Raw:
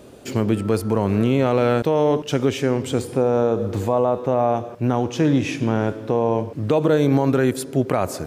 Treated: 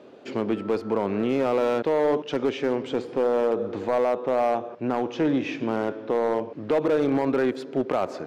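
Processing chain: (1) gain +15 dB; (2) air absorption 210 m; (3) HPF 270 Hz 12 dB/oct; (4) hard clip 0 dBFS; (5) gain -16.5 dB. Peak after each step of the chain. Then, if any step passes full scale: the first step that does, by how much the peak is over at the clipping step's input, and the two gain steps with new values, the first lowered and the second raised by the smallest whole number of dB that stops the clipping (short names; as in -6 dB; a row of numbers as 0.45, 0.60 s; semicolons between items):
+7.0, +7.0, +6.5, 0.0, -16.5 dBFS; step 1, 6.5 dB; step 1 +8 dB, step 5 -9.5 dB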